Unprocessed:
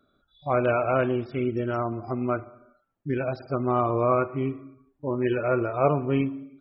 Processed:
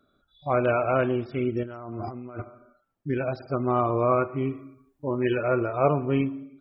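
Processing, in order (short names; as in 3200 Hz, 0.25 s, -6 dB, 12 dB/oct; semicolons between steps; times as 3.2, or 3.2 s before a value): 1.63–2.42 negative-ratio compressor -37 dBFS, ratio -1; 4.51–5.43 high shelf 3100 Hz +8 dB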